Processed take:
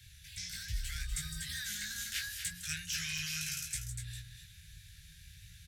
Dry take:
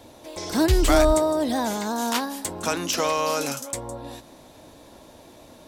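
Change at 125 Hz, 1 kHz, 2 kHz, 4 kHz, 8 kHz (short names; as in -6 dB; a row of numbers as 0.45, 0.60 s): -12.0, -34.0, -8.0, -8.0, -7.5 dB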